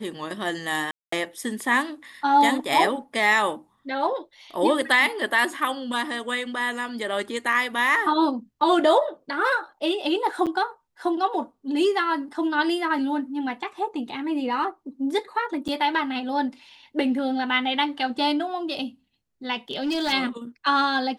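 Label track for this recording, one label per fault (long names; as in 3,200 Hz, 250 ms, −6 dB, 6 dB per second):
0.910000	1.120000	drop-out 214 ms
10.460000	10.470000	drop-out 7.5 ms
15.680000	15.690000	drop-out 7.3 ms
19.710000	20.130000	clipping −21.5 dBFS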